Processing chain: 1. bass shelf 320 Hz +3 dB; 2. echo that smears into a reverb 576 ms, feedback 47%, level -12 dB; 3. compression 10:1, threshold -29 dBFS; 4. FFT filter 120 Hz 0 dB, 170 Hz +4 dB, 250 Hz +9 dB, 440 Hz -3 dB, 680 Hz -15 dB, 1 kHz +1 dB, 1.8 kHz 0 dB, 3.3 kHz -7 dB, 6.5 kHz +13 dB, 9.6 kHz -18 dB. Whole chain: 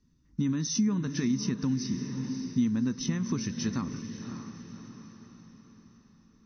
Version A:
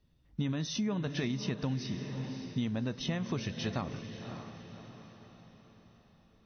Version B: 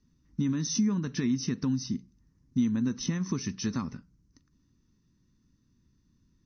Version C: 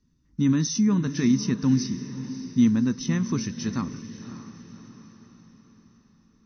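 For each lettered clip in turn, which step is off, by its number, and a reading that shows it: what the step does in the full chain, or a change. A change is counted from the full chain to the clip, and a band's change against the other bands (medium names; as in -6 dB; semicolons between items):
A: 4, 250 Hz band -8.0 dB; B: 2, momentary loudness spread change -8 LU; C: 3, mean gain reduction 2.5 dB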